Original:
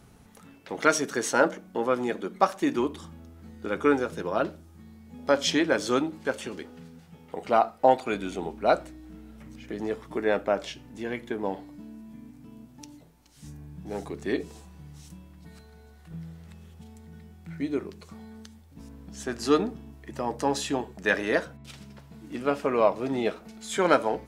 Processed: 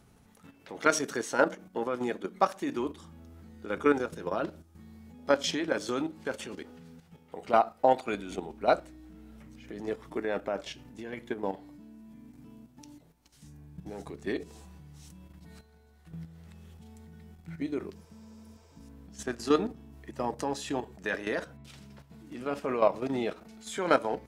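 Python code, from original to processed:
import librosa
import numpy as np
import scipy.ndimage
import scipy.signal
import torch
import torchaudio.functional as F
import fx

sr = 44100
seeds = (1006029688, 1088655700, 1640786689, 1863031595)

y = fx.level_steps(x, sr, step_db=10)
y = fx.spec_repair(y, sr, seeds[0], start_s=17.98, length_s=0.79, low_hz=310.0, high_hz=8800.0, source='after')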